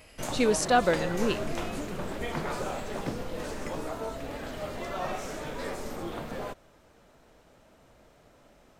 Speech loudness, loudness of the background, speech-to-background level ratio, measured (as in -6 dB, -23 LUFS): -27.0 LUFS, -35.5 LUFS, 8.5 dB